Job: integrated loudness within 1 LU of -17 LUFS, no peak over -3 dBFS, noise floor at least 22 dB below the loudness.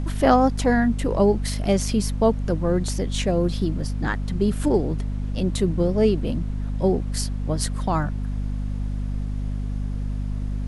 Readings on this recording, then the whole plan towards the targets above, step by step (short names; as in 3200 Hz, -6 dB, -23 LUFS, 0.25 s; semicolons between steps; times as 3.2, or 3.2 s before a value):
hum 50 Hz; harmonics up to 250 Hz; hum level -24 dBFS; noise floor -28 dBFS; noise floor target -46 dBFS; loudness -23.5 LUFS; peak -4.5 dBFS; loudness target -17.0 LUFS
-> de-hum 50 Hz, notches 5; noise print and reduce 18 dB; gain +6.5 dB; limiter -3 dBFS